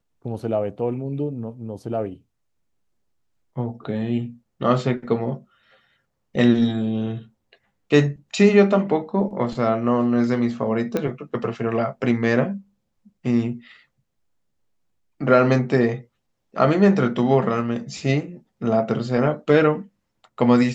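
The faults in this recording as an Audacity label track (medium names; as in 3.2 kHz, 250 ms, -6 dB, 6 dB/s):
10.970000	10.970000	pop -11 dBFS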